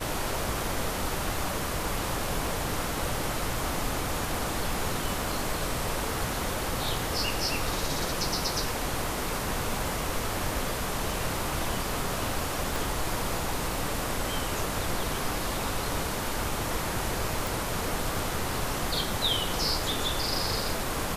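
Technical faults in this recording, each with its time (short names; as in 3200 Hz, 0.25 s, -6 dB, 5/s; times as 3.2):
12.76 pop
17.47 pop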